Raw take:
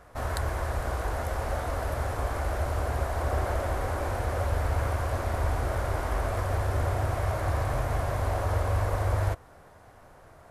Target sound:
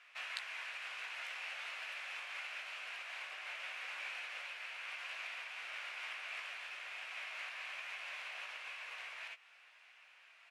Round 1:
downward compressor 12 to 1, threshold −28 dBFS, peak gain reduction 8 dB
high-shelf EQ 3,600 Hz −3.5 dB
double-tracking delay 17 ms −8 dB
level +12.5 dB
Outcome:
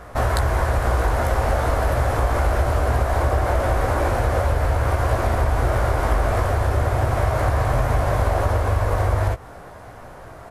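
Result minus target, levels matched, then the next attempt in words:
2,000 Hz band −10.0 dB
downward compressor 12 to 1, threshold −28 dBFS, peak gain reduction 8 dB
four-pole ladder band-pass 2,800 Hz, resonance 70%
high-shelf EQ 3,600 Hz −3.5 dB
double-tracking delay 17 ms −8 dB
level +12.5 dB

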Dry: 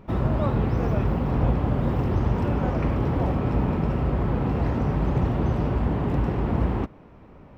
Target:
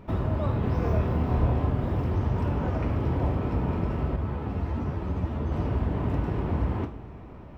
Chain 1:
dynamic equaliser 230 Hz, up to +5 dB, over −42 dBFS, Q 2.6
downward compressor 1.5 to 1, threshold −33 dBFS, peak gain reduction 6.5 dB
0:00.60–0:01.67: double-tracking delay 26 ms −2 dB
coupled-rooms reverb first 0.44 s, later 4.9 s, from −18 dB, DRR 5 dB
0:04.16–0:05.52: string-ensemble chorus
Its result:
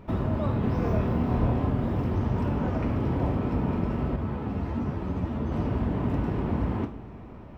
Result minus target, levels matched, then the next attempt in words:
250 Hz band +3.0 dB
dynamic equaliser 71 Hz, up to +5 dB, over −42 dBFS, Q 2.6
downward compressor 1.5 to 1, threshold −33 dBFS, peak gain reduction 6.5 dB
0:00.60–0:01.67: double-tracking delay 26 ms −2 dB
coupled-rooms reverb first 0.44 s, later 4.9 s, from −18 dB, DRR 5 dB
0:04.16–0:05.52: string-ensemble chorus

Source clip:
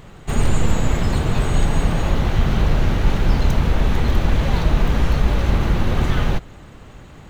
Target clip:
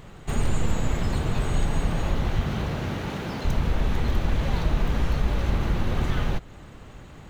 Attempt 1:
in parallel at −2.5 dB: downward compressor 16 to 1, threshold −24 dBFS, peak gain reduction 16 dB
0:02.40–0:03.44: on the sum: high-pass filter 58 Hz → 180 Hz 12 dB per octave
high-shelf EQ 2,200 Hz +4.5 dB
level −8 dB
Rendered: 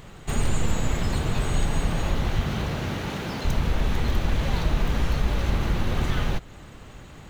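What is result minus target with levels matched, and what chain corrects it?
4,000 Hz band +3.0 dB
in parallel at −2.5 dB: downward compressor 16 to 1, threshold −24 dBFS, peak gain reduction 16 dB
0:02.40–0:03.44: on the sum: high-pass filter 58 Hz → 180 Hz 12 dB per octave
level −8 dB

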